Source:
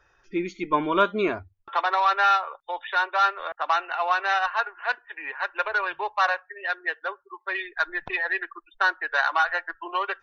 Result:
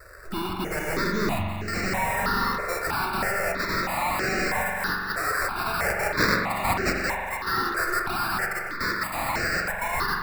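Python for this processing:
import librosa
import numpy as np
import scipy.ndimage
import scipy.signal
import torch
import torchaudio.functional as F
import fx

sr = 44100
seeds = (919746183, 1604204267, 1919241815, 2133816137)

p1 = fx.fold_sine(x, sr, drive_db=18, ceiling_db=-8.0)
p2 = x + F.gain(torch.from_numpy(p1), -7.0).numpy()
p3 = fx.vibrato(p2, sr, rate_hz=1.8, depth_cents=45.0)
p4 = 10.0 ** (-23.5 / 20.0) * np.tanh(p3 / 10.0 ** (-23.5 / 20.0))
p5 = fx.high_shelf_res(p4, sr, hz=3200.0, db=10.0, q=1.5, at=(5.84, 7.04))
p6 = fx.sample_hold(p5, sr, seeds[0], rate_hz=3200.0, jitter_pct=0)
p7 = fx.echo_split(p6, sr, split_hz=920.0, low_ms=81, high_ms=771, feedback_pct=52, wet_db=-13.5)
p8 = fx.rev_spring(p7, sr, rt60_s=2.4, pass_ms=(43,), chirp_ms=50, drr_db=1.0)
y = fx.phaser_held(p8, sr, hz=3.1, low_hz=850.0, high_hz=3500.0)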